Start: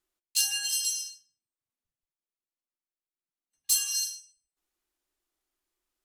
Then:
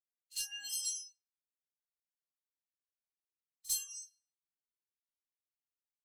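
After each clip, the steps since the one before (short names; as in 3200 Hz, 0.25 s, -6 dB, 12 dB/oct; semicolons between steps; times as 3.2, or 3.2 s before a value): rotary speaker horn 0.8 Hz; spectral noise reduction 24 dB; reverse echo 49 ms -19.5 dB; gain -6.5 dB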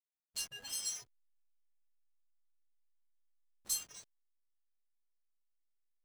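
backlash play -40 dBFS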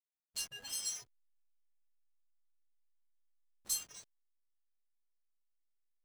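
nothing audible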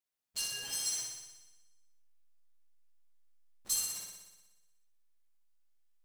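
flutter echo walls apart 10.4 m, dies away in 1.1 s; gain +2.5 dB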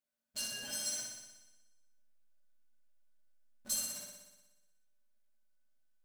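small resonant body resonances 230/590/1500 Hz, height 18 dB, ringing for 95 ms; gain -3 dB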